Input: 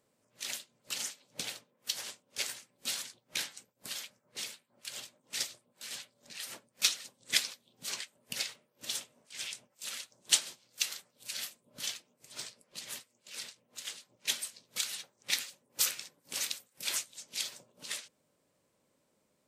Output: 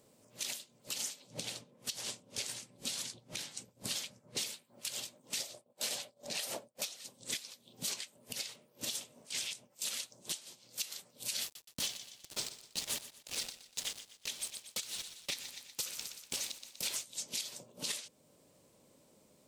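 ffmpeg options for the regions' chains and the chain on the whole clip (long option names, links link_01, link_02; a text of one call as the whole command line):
ffmpeg -i in.wav -filter_complex "[0:a]asettb=1/sr,asplit=3[link_01][link_02][link_03];[link_01]atrim=end=1.274[link_04];[link_02]atrim=start=1.27:end=4.38,asetpts=PTS-STARTPTS,afade=type=in:duration=0.004:curve=qsin,afade=type=out:start_time=3.106:duration=0.004:curve=qsin,lowpass=11000,equalizer=frequency=84:width=0.45:gain=7.5[link_05];[link_03]atrim=start=4.376[link_06];[link_04][link_05]acrossfade=duration=0.004:curve1=hsin:curve2=qsin[link_07];[link_07][link_06]acrossfade=duration=0.004:curve1=qsin:curve2=hsin,asettb=1/sr,asplit=3[link_08][link_09][link_10];[link_08]atrim=end=5.404[link_11];[link_09]atrim=start=5.4:end=6.96,asetpts=PTS-STARTPTS,afade=type=in:duration=0.004:curve=qsin,afade=type=out:start_time=1.556:duration=0.004:curve=qsin,equalizer=frequency=640:width_type=o:width=1.1:gain=10.5,agate=range=-33dB:threshold=-59dB:ratio=3:release=100:detection=peak[link_12];[link_10]atrim=start=6.956[link_13];[link_11][link_12]acrossfade=duration=0.004:curve1=hsin:curve2=qsin[link_14];[link_14][link_13]acrossfade=duration=0.004:curve1=qsin:curve2=hsin,asettb=1/sr,asplit=3[link_15][link_16][link_17];[link_15]atrim=end=11.434[link_18];[link_16]atrim=start=11.43:end=17.02,asetpts=PTS-STARTPTS,afade=type=in:duration=0.004:curve=qsin,afade=type=out:start_time=5.586:duration=0.004:curve=qsin,acrusher=bits=6:mix=0:aa=0.5,highshelf=frequency=12000:gain=-7.5,aecho=1:1:121|242|363:0.178|0.0658|0.0243,atrim=end_sample=246519[link_19];[link_17]atrim=start=17.016[link_20];[link_18][link_19]acrossfade=duration=0.004:curve1=hsin:curve2=qsin[link_21];[link_21][link_20]acrossfade=duration=0.004:curve1=qsin:curve2=hsin,acompressor=threshold=-37dB:ratio=6,equalizer=frequency=1600:width_type=o:width=1.3:gain=-7.5,alimiter=level_in=10.5dB:limit=-24dB:level=0:latency=1:release=432,volume=-10.5dB,volume=10.5dB" out.wav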